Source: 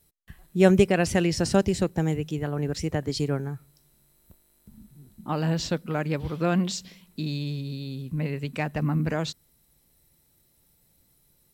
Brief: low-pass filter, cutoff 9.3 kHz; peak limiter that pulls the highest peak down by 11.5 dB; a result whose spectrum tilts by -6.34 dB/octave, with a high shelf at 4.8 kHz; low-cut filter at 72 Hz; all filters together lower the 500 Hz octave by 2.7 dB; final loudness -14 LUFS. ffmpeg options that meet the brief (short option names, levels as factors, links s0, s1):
-af "highpass=72,lowpass=9300,equalizer=f=500:t=o:g=-3.5,highshelf=f=4800:g=-5.5,volume=6.31,alimiter=limit=0.841:level=0:latency=1"